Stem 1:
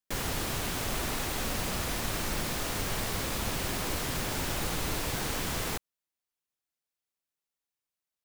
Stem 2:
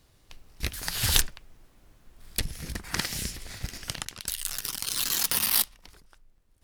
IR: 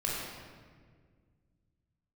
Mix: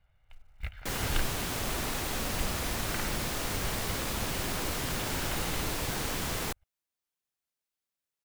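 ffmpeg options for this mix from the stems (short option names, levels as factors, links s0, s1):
-filter_complex "[0:a]adelay=750,volume=0.944[s0];[1:a]lowpass=f=2600:w=0.5412,lowpass=f=2600:w=1.3066,equalizer=f=280:w=0.71:g=-13.5,aecho=1:1:1.4:0.53,volume=0.501[s1];[s0][s1]amix=inputs=2:normalize=0,acrusher=bits=7:mode=log:mix=0:aa=0.000001"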